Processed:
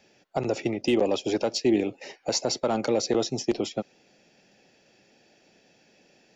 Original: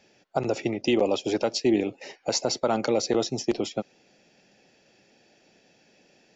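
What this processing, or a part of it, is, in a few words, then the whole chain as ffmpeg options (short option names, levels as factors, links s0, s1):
one-band saturation: -filter_complex "[0:a]acrossover=split=570|4300[s0][s1][s2];[s1]asoftclip=type=tanh:threshold=0.0631[s3];[s0][s3][s2]amix=inputs=3:normalize=0"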